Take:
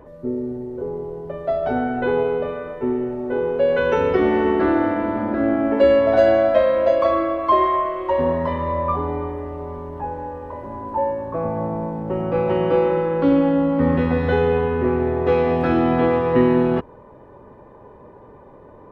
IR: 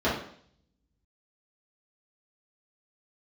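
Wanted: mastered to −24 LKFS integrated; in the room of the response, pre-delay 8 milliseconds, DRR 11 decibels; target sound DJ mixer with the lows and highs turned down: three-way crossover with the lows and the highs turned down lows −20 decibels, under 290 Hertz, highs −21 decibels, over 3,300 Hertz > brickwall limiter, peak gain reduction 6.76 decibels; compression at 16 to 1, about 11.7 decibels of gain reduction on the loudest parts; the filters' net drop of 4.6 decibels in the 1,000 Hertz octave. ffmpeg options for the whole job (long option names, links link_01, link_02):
-filter_complex "[0:a]equalizer=frequency=1000:width_type=o:gain=-5.5,acompressor=threshold=-23dB:ratio=16,asplit=2[link_01][link_02];[1:a]atrim=start_sample=2205,adelay=8[link_03];[link_02][link_03]afir=irnorm=-1:irlink=0,volume=-25.5dB[link_04];[link_01][link_04]amix=inputs=2:normalize=0,acrossover=split=290 3300:gain=0.1 1 0.0891[link_05][link_06][link_07];[link_05][link_06][link_07]amix=inputs=3:normalize=0,volume=7dB,alimiter=limit=-15.5dB:level=0:latency=1"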